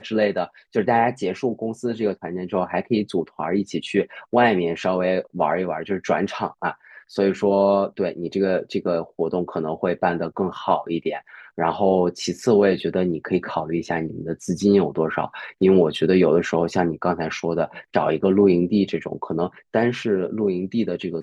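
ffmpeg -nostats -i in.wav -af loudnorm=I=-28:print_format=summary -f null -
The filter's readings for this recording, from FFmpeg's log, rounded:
Input Integrated:    -22.2 LUFS
Input True Peak:      -4.2 dBTP
Input LRA:             3.4 LU
Input Threshold:     -32.2 LUFS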